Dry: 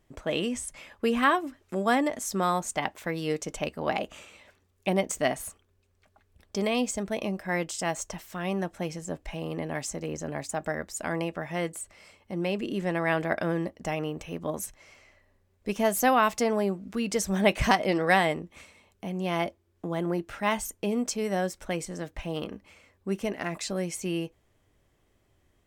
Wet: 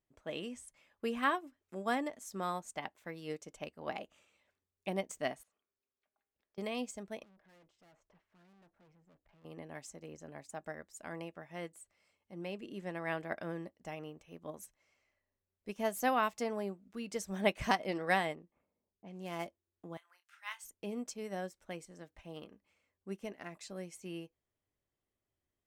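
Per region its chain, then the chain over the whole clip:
5.43–6.58 three-band isolator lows -14 dB, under 230 Hz, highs -22 dB, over 5600 Hz + de-hum 88.67 Hz, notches 29 + compressor 4:1, threshold -57 dBFS
7.23–9.45 LPF 1900 Hz + tube stage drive 42 dB, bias 0.5
18.35–19.47 switching dead time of 0.061 ms + low-pass opened by the level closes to 420 Hz, open at -28 dBFS + bell 80 Hz -8 dB 0.35 oct
19.97–20.64 HPF 1200 Hz 24 dB/oct + doubler 28 ms -9 dB
whole clip: low shelf 74 Hz -6.5 dB; upward expander 1.5:1, over -45 dBFS; gain -7 dB

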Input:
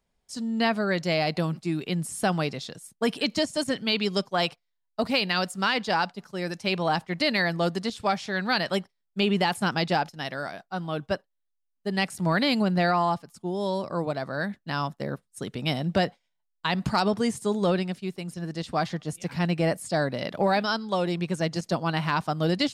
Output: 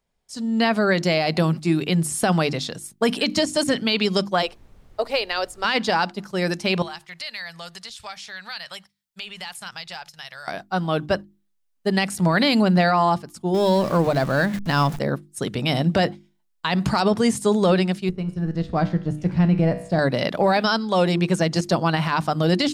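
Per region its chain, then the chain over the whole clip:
4.41–5.64 ladder high-pass 380 Hz, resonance 45% + added noise brown -56 dBFS
6.82–10.48 passive tone stack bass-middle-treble 10-0-10 + compressor 2:1, threshold -47 dBFS
13.54–14.99 zero-crossing step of -39 dBFS + low shelf 170 Hz +6 dB
18.09–19.99 G.711 law mismatch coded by A + RIAA curve playback + resonator 61 Hz, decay 0.62 s
whole clip: notches 50/100/150/200/250/300/350 Hz; limiter -18.5 dBFS; AGC gain up to 8.5 dB

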